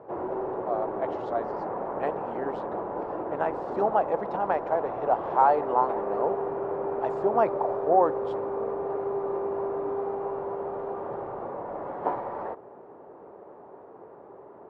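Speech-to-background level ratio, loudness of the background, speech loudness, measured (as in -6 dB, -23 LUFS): 4.0 dB, -32.0 LUFS, -28.0 LUFS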